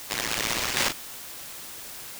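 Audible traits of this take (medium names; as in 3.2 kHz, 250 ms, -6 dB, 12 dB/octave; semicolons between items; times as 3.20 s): aliases and images of a low sample rate 12 kHz; tremolo saw down 1.3 Hz, depth 55%; a quantiser's noise floor 8-bit, dither triangular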